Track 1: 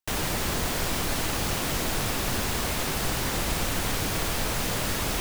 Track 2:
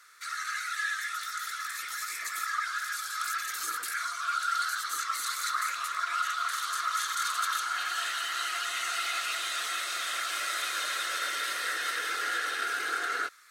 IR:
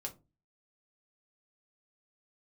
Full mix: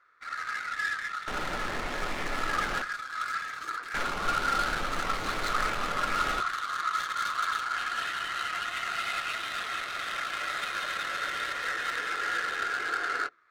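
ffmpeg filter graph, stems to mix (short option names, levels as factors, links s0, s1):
-filter_complex "[0:a]equalizer=f=92:t=o:w=2.8:g=-11.5,adelay=1200,volume=0.562,asplit=3[s0][s1][s2];[s0]atrim=end=2.82,asetpts=PTS-STARTPTS,afade=t=out:st=2.816:d=0.004:c=hsin[s3];[s1]atrim=start=2.82:end=3.94,asetpts=PTS-STARTPTS,volume=0[s4];[s2]atrim=start=3.94,asetpts=PTS-STARTPTS,afade=t=in:d=0.004:c=hsin[s5];[s3][s4][s5]concat=n=3:v=0:a=1,asplit=2[s6][s7];[s7]volume=0.501[s8];[1:a]volume=1.06,asplit=2[s9][s10];[s10]volume=0.178[s11];[2:a]atrim=start_sample=2205[s12];[s8][s11]amix=inputs=2:normalize=0[s13];[s13][s12]afir=irnorm=-1:irlink=0[s14];[s6][s9][s14]amix=inputs=3:normalize=0,adynamicsmooth=sensitivity=4:basefreq=1100"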